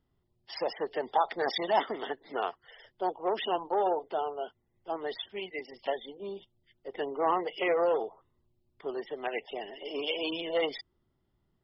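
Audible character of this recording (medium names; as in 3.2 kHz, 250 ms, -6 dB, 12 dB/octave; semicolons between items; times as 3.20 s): noise floor -76 dBFS; spectral tilt -0.5 dB/octave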